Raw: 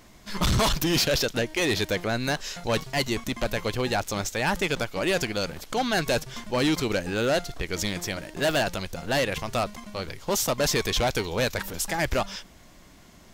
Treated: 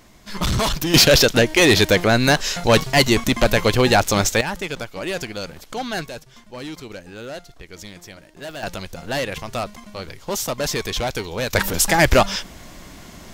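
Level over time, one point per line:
+2 dB
from 0:00.94 +11 dB
from 0:04.41 −1.5 dB
from 0:06.06 −9.5 dB
from 0:08.63 +0.5 dB
from 0:11.53 +11.5 dB

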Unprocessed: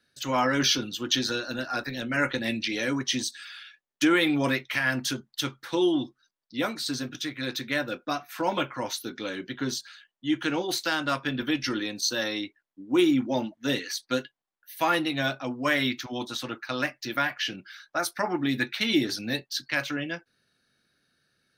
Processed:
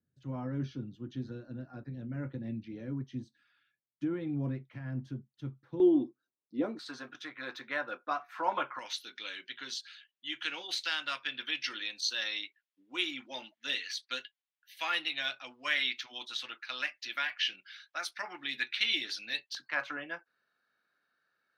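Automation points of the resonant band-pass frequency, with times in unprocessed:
resonant band-pass, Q 1.5
120 Hz
from 0:05.80 340 Hz
from 0:06.79 1,100 Hz
from 0:08.79 2,900 Hz
from 0:19.55 1,100 Hz

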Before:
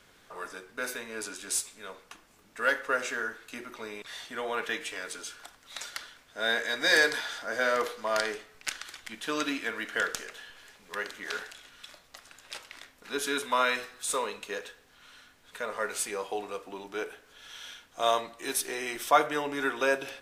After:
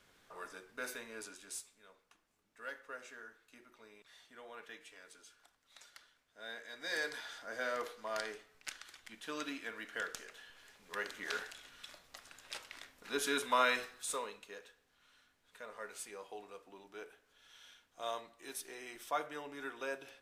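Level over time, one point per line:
0:01.04 −8 dB
0:01.86 −19 dB
0:06.67 −19 dB
0:07.30 −11 dB
0:10.08 −11 dB
0:11.22 −4 dB
0:13.81 −4 dB
0:14.53 −14.5 dB

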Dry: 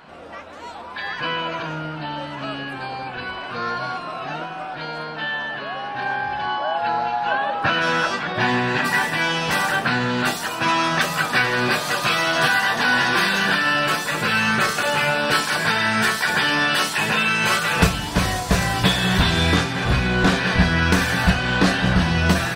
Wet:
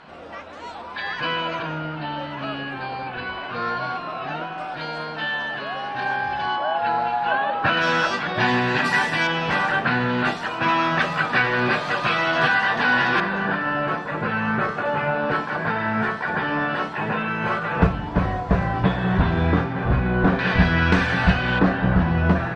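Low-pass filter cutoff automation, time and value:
6,300 Hz
from 0:01.59 3,800 Hz
from 0:04.58 8,700 Hz
from 0:06.56 3,600 Hz
from 0:07.77 6,000 Hz
from 0:09.27 2,800 Hz
from 0:13.20 1,300 Hz
from 0:20.39 3,000 Hz
from 0:21.59 1,400 Hz

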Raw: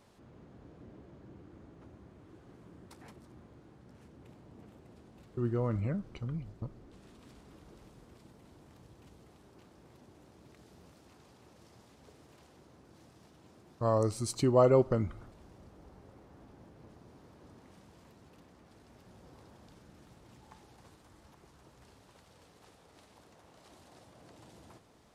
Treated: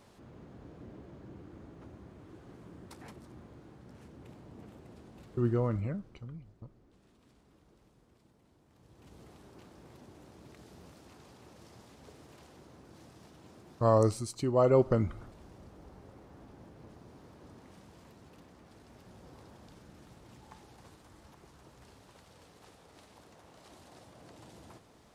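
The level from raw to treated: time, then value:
0:05.51 +3.5 dB
0:06.40 −9 dB
0:08.67 −9 dB
0:09.20 +4 dB
0:14.08 +4 dB
0:14.32 −6 dB
0:14.90 +2.5 dB

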